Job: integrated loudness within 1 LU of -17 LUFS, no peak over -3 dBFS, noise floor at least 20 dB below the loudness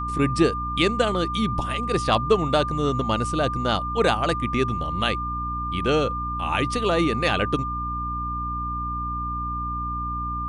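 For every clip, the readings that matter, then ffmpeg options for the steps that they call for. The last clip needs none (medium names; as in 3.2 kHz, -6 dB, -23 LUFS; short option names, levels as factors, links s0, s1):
hum 60 Hz; highest harmonic 300 Hz; hum level -30 dBFS; steady tone 1.2 kHz; tone level -27 dBFS; loudness -24.0 LUFS; peak level -5.5 dBFS; loudness target -17.0 LUFS
-> -af "bandreject=f=60:t=h:w=6,bandreject=f=120:t=h:w=6,bandreject=f=180:t=h:w=6,bandreject=f=240:t=h:w=6,bandreject=f=300:t=h:w=6"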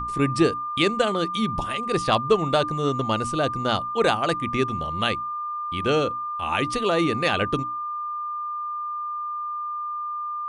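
hum not found; steady tone 1.2 kHz; tone level -27 dBFS
-> -af "bandreject=f=1200:w=30"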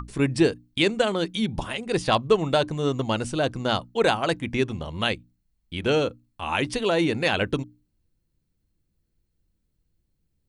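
steady tone not found; loudness -25.0 LUFS; peak level -6.5 dBFS; loudness target -17.0 LUFS
-> -af "volume=2.51,alimiter=limit=0.708:level=0:latency=1"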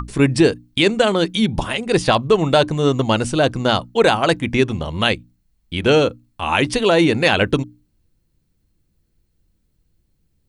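loudness -17.5 LUFS; peak level -3.0 dBFS; noise floor -66 dBFS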